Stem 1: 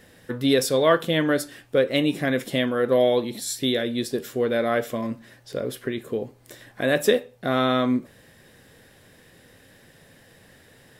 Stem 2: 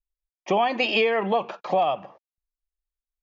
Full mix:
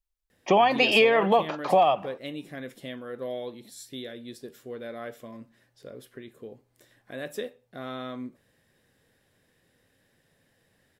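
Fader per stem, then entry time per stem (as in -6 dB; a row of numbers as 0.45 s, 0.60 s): -15.0 dB, +2.0 dB; 0.30 s, 0.00 s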